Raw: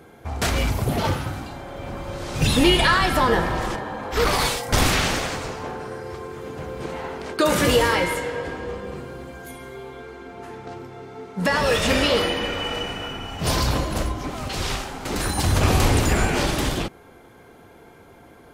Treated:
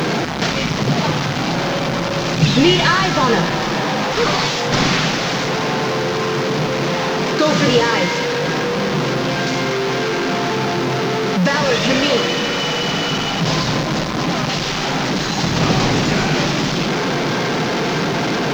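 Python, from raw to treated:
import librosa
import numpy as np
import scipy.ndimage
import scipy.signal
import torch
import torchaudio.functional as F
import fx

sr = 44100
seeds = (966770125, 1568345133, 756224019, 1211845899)

y = fx.delta_mod(x, sr, bps=32000, step_db=-16.5)
y = fx.low_shelf_res(y, sr, hz=110.0, db=-11.0, q=3.0)
y = fx.quant_dither(y, sr, seeds[0], bits=8, dither='none')
y = y * librosa.db_to_amplitude(3.0)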